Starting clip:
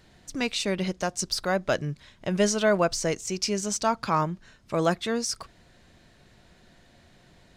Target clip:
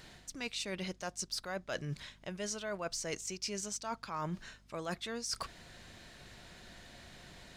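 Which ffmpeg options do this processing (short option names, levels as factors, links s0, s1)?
-af "tiltshelf=f=820:g=-3.5,areverse,acompressor=threshold=0.0112:ratio=10,areverse,aeval=exprs='val(0)+0.000501*(sin(2*PI*50*n/s)+sin(2*PI*2*50*n/s)/2+sin(2*PI*3*50*n/s)/3+sin(2*PI*4*50*n/s)/4+sin(2*PI*5*50*n/s)/5)':c=same,volume=1.41"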